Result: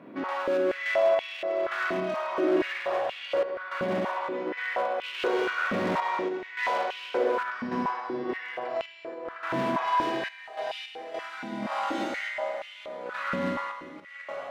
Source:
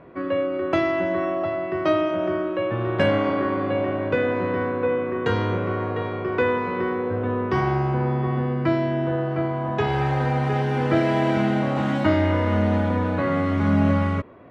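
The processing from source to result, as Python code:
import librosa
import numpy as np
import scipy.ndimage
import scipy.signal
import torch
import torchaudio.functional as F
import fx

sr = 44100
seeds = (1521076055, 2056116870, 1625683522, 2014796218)

y = fx.over_compress(x, sr, threshold_db=-27.0, ratio=-0.5)
y = fx.high_shelf(y, sr, hz=2100.0, db=10.5)
y = fx.room_flutter(y, sr, wall_m=10.2, rt60_s=0.68)
y = fx.dereverb_blind(y, sr, rt60_s=1.9)
y = fx.tube_stage(y, sr, drive_db=22.0, bias=0.6)
y = fx.doubler(y, sr, ms=23.0, db=-9)
y = fx.rev_schroeder(y, sr, rt60_s=2.9, comb_ms=33, drr_db=-3.0)
y = fx.tremolo_random(y, sr, seeds[0], hz=3.5, depth_pct=80)
y = np.clip(y, -10.0 ** (-26.5 / 20.0), 10.0 ** (-26.5 / 20.0))
y = fx.filter_held_highpass(y, sr, hz=4.2, low_hz=220.0, high_hz=2800.0)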